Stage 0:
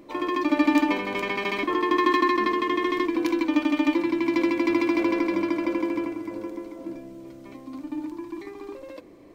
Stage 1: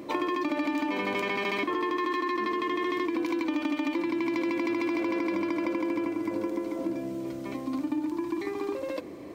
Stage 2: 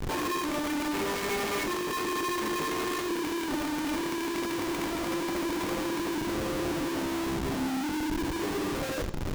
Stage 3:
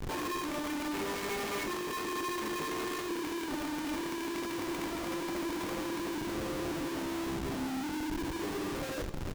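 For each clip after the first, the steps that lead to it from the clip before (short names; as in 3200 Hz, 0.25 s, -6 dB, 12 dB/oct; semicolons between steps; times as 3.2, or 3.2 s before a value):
HPF 76 Hz; limiter -18.5 dBFS, peak gain reduction 9 dB; compressor 6:1, threshold -34 dBFS, peak gain reduction 10.5 dB; gain +7.5 dB
chorus voices 6, 0.3 Hz, delay 25 ms, depth 2.4 ms; Schmitt trigger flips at -40.5 dBFS; on a send at -9 dB: reverb RT60 0.65 s, pre-delay 3 ms; on the sum: gain +1 dB
echo 0.326 s -16 dB; gain -5 dB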